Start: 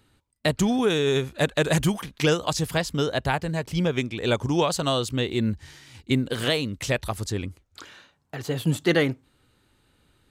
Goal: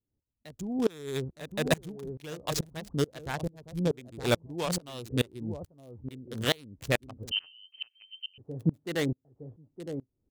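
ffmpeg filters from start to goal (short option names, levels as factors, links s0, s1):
-filter_complex "[0:a]aecho=1:1:914:0.376,acrossover=split=680[s0][s1];[s1]acrusher=bits=3:mix=0:aa=0.5[s2];[s0][s2]amix=inputs=2:normalize=0,asettb=1/sr,asplit=3[s3][s4][s5];[s3]atrim=end=7.314[s6];[s4]atrim=start=7.31:end=8.38,asetpts=PTS-STARTPTS,afade=t=in:d=0.004:c=qsin,afade=t=out:st=1.066:d=0.004:c=qsin,lowpass=f=2700:t=q:w=0.5098,lowpass=f=2700:t=q:w=0.6013,lowpass=f=2700:t=q:w=0.9,lowpass=f=2700:t=q:w=2.563,afreqshift=-3200[s7];[s5]atrim=start=8.376[s8];[s6][s7]acrossfade=d=0.004:c1=hsin:c2=qsin[s9];[s9][s8]acrossfade=d=0.004:c1=qsin:c2=hsin,aeval=exprs='val(0)*pow(10,-28*if(lt(mod(-2.3*n/s,1),2*abs(-2.3)/1000),1-mod(-2.3*n/s,1)/(2*abs(-2.3)/1000),(mod(-2.3*n/s,1)-2*abs(-2.3)/1000)/(1-2*abs(-2.3)/1000))/20)':c=same"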